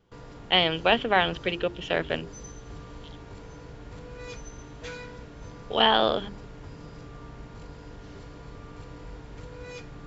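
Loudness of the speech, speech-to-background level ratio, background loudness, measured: -24.5 LUFS, 19.5 dB, -44.0 LUFS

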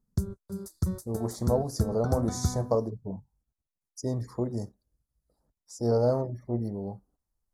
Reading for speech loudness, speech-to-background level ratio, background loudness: -30.5 LUFS, 3.5 dB, -34.0 LUFS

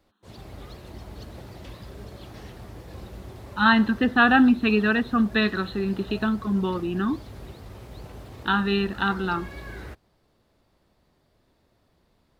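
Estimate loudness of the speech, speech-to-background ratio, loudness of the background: -22.5 LUFS, 20.0 dB, -42.5 LUFS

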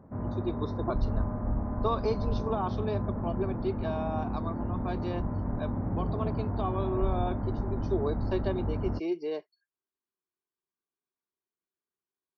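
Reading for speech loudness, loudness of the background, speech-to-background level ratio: -35.5 LUFS, -33.5 LUFS, -2.0 dB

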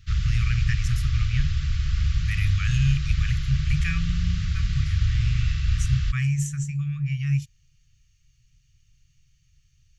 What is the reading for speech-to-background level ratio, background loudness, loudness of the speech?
-1.5 dB, -26.5 LUFS, -28.0 LUFS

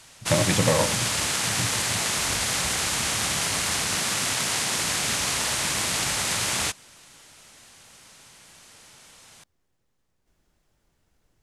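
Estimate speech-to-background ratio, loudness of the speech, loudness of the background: -3.0 dB, -26.5 LUFS, -23.5 LUFS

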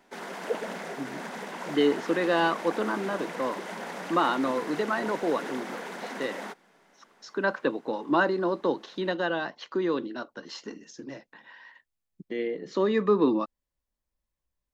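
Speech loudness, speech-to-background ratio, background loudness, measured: -28.5 LUFS, 8.5 dB, -37.0 LUFS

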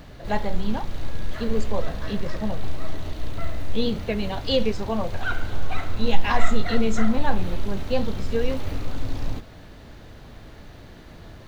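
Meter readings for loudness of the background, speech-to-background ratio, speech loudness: -34.0 LUFS, 5.5 dB, -28.5 LUFS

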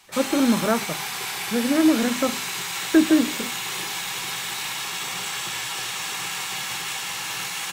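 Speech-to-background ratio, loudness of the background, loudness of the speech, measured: 5.5 dB, -27.5 LUFS, -22.0 LUFS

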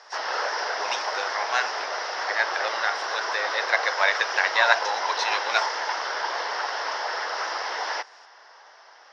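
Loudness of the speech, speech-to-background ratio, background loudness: -26.0 LUFS, 2.0 dB, -28.0 LUFS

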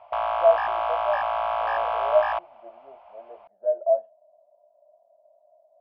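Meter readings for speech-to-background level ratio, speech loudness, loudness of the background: 0.0 dB, -26.0 LUFS, -26.0 LUFS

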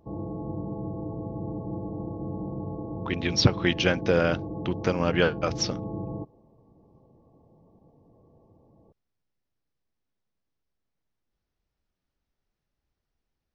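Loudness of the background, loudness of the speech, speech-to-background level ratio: -35.0 LUFS, -26.0 LUFS, 9.0 dB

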